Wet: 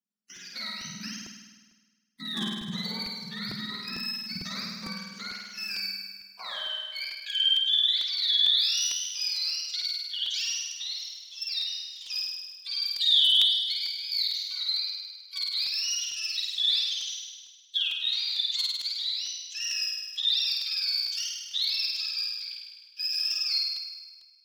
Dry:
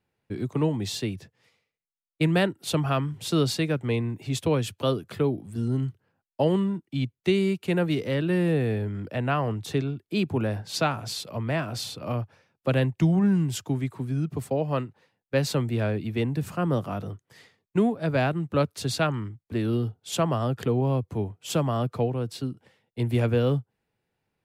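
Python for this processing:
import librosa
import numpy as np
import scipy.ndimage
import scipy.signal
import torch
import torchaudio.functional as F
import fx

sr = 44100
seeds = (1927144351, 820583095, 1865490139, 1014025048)

y = fx.octave_mirror(x, sr, pivot_hz=780.0)
y = fx.level_steps(y, sr, step_db=11)
y = librosa.effects.preemphasis(y, coef=0.9, zi=[0.0])
y = fx.leveller(y, sr, passes=1)
y = np.clip(10.0 ** (31.5 / 20.0) * y, -1.0, 1.0) / 10.0 ** (31.5 / 20.0)
y = fx.filter_sweep_highpass(y, sr, from_hz=200.0, to_hz=3400.0, start_s=5.97, end_s=7.48, q=5.5)
y = fx.room_flutter(y, sr, wall_m=8.8, rt60_s=1.4)
y = fx.buffer_crackle(y, sr, first_s=0.36, period_s=0.45, block=128, kind='repeat')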